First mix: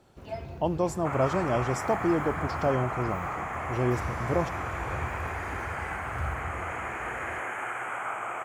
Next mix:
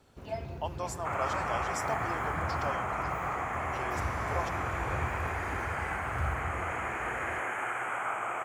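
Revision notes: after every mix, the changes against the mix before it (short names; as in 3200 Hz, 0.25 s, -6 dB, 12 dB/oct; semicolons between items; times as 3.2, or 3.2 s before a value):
speech: add HPF 1000 Hz 12 dB/oct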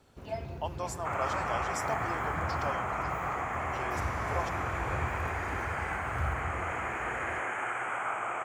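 second sound: add LPF 9600 Hz 24 dB/oct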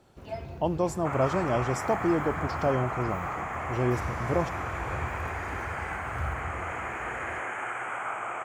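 speech: remove HPF 1000 Hz 12 dB/oct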